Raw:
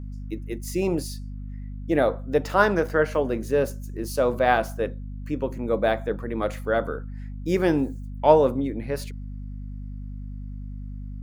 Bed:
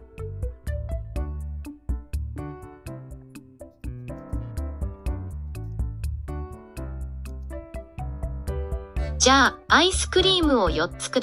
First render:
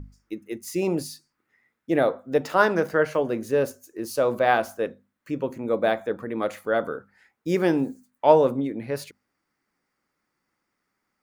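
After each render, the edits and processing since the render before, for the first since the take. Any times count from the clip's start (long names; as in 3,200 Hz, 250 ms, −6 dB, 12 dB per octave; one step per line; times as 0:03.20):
mains-hum notches 50/100/150/200/250 Hz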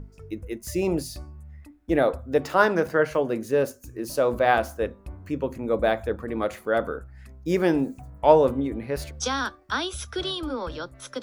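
mix in bed −10.5 dB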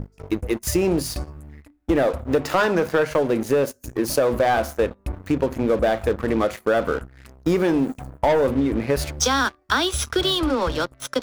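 leveller curve on the samples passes 3
downward compressor 5 to 1, threshold −17 dBFS, peak gain reduction 10 dB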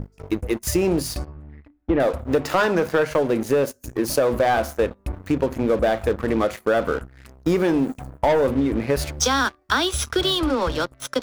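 0:01.25–0:02.00: high-frequency loss of the air 310 metres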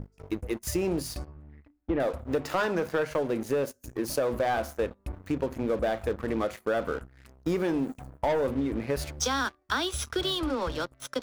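level −8 dB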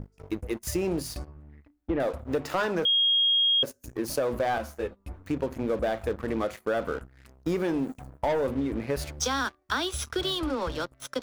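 0:02.85–0:03.63: beep over 3,260 Hz −19.5 dBFS
0:04.58–0:05.26: string-ensemble chorus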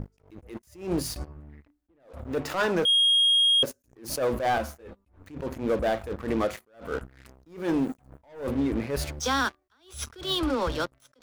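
leveller curve on the samples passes 1
level that may rise only so fast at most 140 dB per second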